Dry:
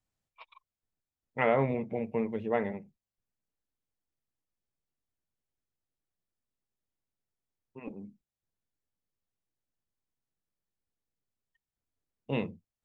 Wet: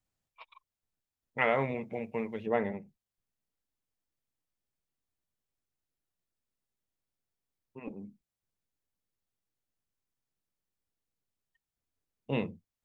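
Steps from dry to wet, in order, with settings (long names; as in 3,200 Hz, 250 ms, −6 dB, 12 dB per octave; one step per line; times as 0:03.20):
0:01.38–0:02.47: tilt shelving filter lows −5 dB, about 1,100 Hz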